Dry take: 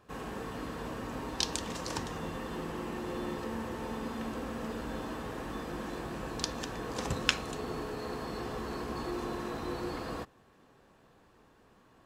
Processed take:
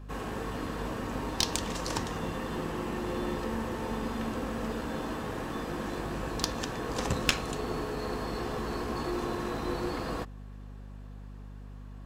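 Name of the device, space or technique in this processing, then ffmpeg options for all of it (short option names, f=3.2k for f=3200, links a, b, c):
valve amplifier with mains hum: -af "aeval=exprs='(tanh(7.94*val(0)+0.65)-tanh(0.65))/7.94':c=same,aeval=exprs='val(0)+0.00316*(sin(2*PI*50*n/s)+sin(2*PI*2*50*n/s)/2+sin(2*PI*3*50*n/s)/3+sin(2*PI*4*50*n/s)/4+sin(2*PI*5*50*n/s)/5)':c=same,volume=7dB"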